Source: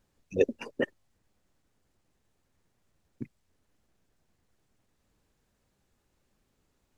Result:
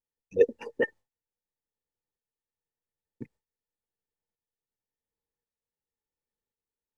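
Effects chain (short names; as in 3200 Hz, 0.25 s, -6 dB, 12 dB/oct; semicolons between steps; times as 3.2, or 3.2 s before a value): tremolo saw up 0.92 Hz, depth 50%; gate with hold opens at -59 dBFS; small resonant body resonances 470/870/1800 Hz, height 13 dB, ringing for 45 ms; gain -3 dB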